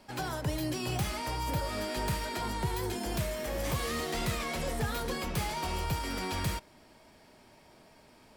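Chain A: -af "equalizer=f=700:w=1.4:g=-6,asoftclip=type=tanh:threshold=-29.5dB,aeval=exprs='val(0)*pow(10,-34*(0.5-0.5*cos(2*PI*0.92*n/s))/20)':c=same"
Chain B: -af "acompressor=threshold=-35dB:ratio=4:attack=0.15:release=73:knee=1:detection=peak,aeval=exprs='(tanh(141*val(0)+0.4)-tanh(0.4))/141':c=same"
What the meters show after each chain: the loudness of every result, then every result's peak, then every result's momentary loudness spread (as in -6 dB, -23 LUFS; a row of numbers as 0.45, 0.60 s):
-42.0, -46.0 LUFS; -30.0, -40.0 dBFS; 19, 14 LU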